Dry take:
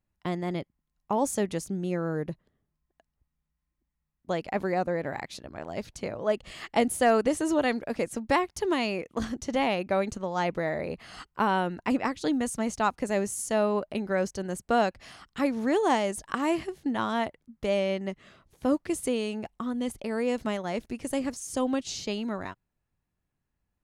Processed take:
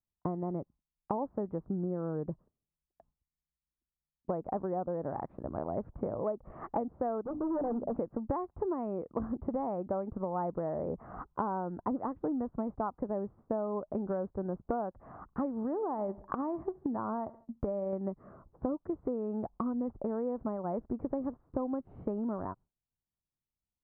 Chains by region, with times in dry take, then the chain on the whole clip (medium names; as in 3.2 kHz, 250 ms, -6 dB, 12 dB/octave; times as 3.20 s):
7.22–7.96 s: inverse Chebyshev low-pass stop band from 3.6 kHz, stop band 60 dB + hum notches 50/100/150/200/250/300 Hz + hard clipper -28.5 dBFS
15.63–17.93 s: feedback delay 70 ms, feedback 44%, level -21.5 dB + transient shaper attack +3 dB, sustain -7 dB + compression, threshold -27 dBFS
whole clip: steep low-pass 1.2 kHz 36 dB/octave; gate with hold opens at -51 dBFS; compression 10:1, threshold -36 dBFS; trim +5.5 dB